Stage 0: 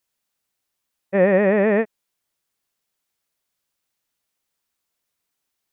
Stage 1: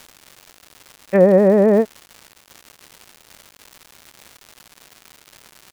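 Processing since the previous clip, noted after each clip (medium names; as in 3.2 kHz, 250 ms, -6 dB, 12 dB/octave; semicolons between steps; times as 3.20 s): low-pass that closes with the level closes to 870 Hz, closed at -15 dBFS; crackle 290 per s -34 dBFS; trim +5 dB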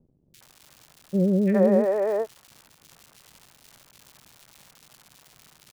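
peaking EQ 140 Hz +7.5 dB 0.69 oct; three bands offset in time lows, highs, mids 340/410 ms, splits 410/1900 Hz; trim -6 dB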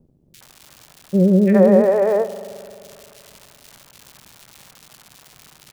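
spring tank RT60 2.5 s, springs 43 ms, chirp 35 ms, DRR 13.5 dB; trim +7 dB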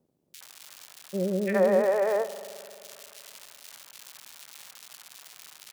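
high-pass 1.3 kHz 6 dB/octave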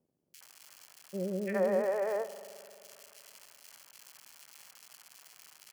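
band-stop 3.7 kHz, Q 5.7; trim -7 dB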